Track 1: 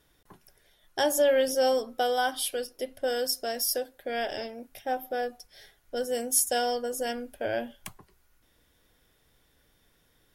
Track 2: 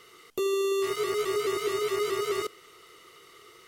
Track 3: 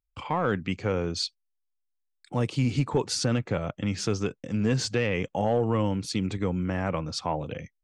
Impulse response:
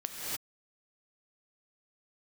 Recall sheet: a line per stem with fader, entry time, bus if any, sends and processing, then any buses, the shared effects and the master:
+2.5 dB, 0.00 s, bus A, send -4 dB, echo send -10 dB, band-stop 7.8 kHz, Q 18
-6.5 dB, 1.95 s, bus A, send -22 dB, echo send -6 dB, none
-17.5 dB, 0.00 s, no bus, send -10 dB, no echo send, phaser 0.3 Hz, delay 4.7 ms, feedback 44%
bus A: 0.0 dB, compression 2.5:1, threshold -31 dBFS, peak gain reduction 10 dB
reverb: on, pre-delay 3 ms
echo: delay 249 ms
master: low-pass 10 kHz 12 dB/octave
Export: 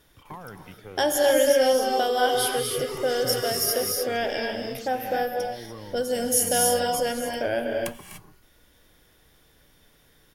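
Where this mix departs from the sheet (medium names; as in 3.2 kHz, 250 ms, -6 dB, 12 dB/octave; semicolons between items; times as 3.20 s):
stem 2: entry 1.95 s -> 1.45 s; master: missing low-pass 10 kHz 12 dB/octave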